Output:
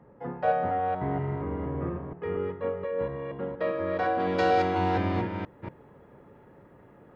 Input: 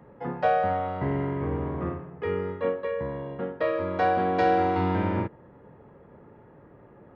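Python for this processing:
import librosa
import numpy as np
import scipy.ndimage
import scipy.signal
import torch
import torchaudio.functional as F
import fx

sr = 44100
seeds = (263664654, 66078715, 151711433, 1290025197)

y = fx.reverse_delay(x, sr, ms=237, wet_db=-4)
y = fx.high_shelf(y, sr, hz=3400.0, db=fx.steps((0.0, -10.5), (2.97, -2.5), (4.19, 11.5)))
y = y * 10.0 ** (-3.5 / 20.0)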